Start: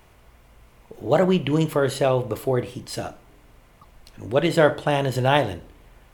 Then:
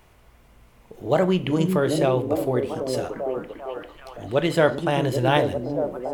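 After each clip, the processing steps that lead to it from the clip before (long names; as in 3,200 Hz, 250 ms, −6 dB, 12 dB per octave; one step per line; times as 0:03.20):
echo through a band-pass that steps 395 ms, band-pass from 230 Hz, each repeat 0.7 octaves, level −0.5 dB
level −1.5 dB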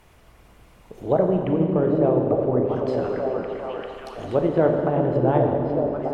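treble cut that deepens with the level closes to 760 Hz, closed at −18.5 dBFS
four-comb reverb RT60 2.5 s, combs from 28 ms, DRR 1.5 dB
harmonic and percussive parts rebalanced harmonic −5 dB
level +3 dB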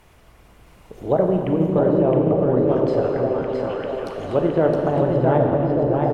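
on a send: single-tap delay 665 ms −4 dB
on the sum: boost into a limiter +7.5 dB
level −6 dB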